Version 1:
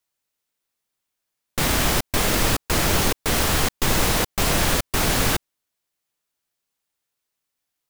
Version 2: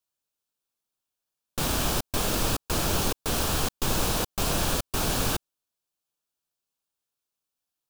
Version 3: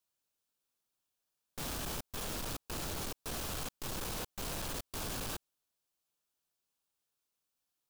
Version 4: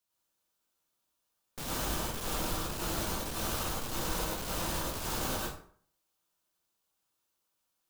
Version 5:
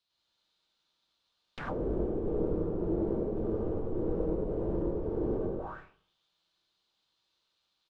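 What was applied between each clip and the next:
peaking EQ 2 kHz -11.5 dB 0.32 oct; trim -5.5 dB
peak limiter -19.5 dBFS, peak gain reduction 6 dB; saturation -37.5 dBFS, distortion -6 dB
plate-style reverb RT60 0.54 s, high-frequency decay 0.65×, pre-delay 85 ms, DRR -5 dB
bouncing-ball echo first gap 100 ms, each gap 0.8×, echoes 5; touch-sensitive low-pass 420–4000 Hz down, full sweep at -30.5 dBFS

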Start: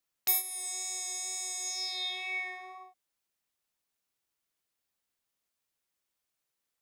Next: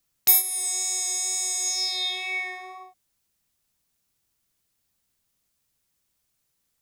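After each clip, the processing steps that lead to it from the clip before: tone controls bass +12 dB, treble +5 dB; trim +5.5 dB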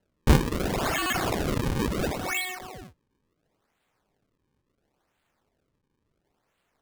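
decimation with a swept rate 37×, swing 160% 0.72 Hz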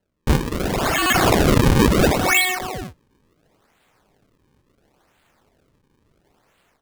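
level rider gain up to 13 dB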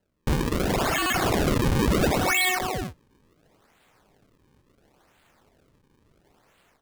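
peak limiter -15.5 dBFS, peak gain reduction 11.5 dB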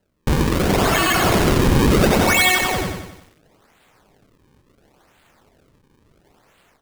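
bit-crushed delay 92 ms, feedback 55%, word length 9-bit, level -4.5 dB; trim +5.5 dB

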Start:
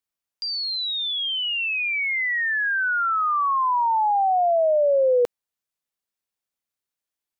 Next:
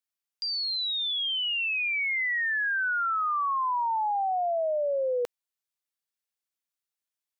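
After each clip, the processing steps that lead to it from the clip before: tilt shelf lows -4.5 dB, about 830 Hz; trim -7 dB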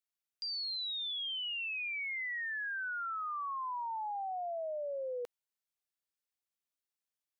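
peak limiter -30.5 dBFS, peak gain reduction 8 dB; trim -4.5 dB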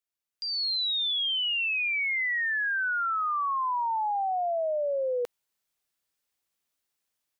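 level rider gain up to 10 dB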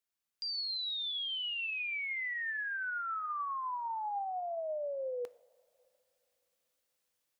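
peak limiter -34 dBFS, peak gain reduction 9 dB; two-slope reverb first 0.54 s, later 3 s, from -18 dB, DRR 15 dB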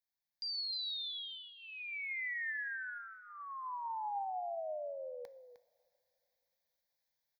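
static phaser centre 1.9 kHz, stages 8; delay 307 ms -11.5 dB; trim -2 dB

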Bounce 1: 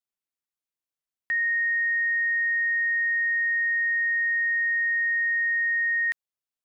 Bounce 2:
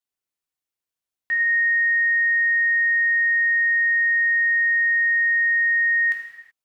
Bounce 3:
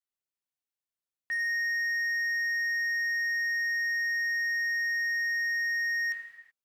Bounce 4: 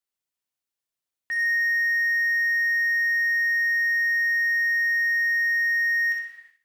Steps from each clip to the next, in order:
reverberation, pre-delay 3 ms, DRR -0.5 dB
hard clipper -20 dBFS, distortion -16 dB; trim -8 dB
feedback echo behind a high-pass 63 ms, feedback 31%, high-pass 1.8 kHz, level -4.5 dB; trim +3.5 dB

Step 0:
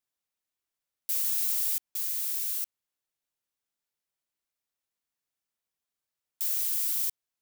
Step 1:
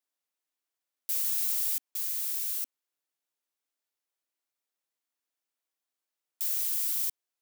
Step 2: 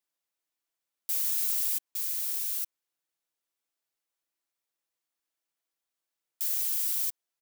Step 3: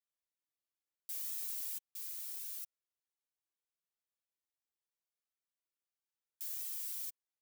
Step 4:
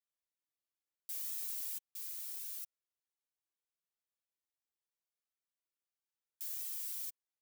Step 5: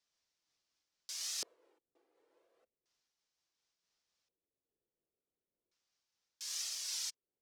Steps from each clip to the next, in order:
Chebyshev high-pass 260 Hz, order 4
comb 6 ms, depth 36%
flange 0.75 Hz, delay 1.5 ms, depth 1.1 ms, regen -32%; trim -8 dB
no audible change
LFO low-pass square 0.35 Hz 430–5500 Hz; random flutter of the level, depth 60%; trim +11.5 dB

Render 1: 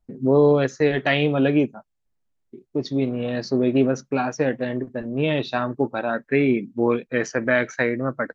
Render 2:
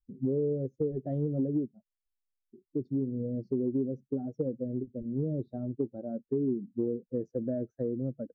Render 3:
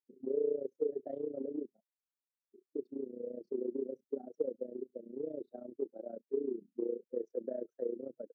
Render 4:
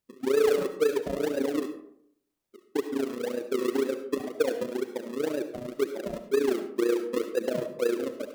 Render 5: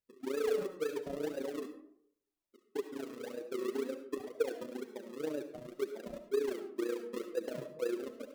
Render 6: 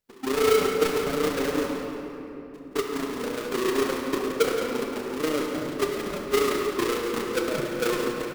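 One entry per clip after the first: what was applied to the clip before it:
expander on every frequency bin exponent 1.5; inverse Chebyshev low-pass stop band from 950 Hz, stop band 40 dB; compression 6:1, threshold -27 dBFS, peak gain reduction 11.5 dB
ladder high-pass 330 Hz, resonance 40%; AM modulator 29 Hz, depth 70%; trim +4.5 dB
in parallel at -4 dB: decimation with a swept rate 40×, swing 100% 2 Hz; on the sum: reverberation RT60 0.70 s, pre-delay 30 ms, DRR 8.5 dB; saturation -22.5 dBFS, distortion -18 dB; trim +8 dB
flange 0.46 Hz, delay 1.8 ms, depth 5.4 ms, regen +37%; trim -6 dB
square wave that keeps the level; on a send: feedback delay 173 ms, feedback 41%, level -10 dB; on the sum: simulated room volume 190 m³, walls hard, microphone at 0.39 m; trim +5.5 dB

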